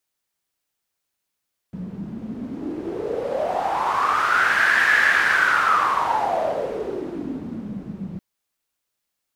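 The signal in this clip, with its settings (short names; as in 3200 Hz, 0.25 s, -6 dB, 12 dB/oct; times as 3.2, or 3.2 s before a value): wind-like swept noise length 6.46 s, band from 190 Hz, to 1700 Hz, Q 7.8, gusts 1, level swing 14 dB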